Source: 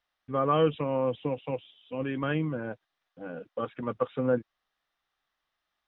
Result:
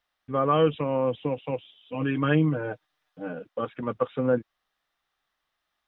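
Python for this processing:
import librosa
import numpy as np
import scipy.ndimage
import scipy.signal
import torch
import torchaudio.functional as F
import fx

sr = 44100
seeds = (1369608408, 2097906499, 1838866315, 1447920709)

y = fx.comb(x, sr, ms=6.6, depth=0.86, at=(1.94, 3.33))
y = F.gain(torch.from_numpy(y), 2.5).numpy()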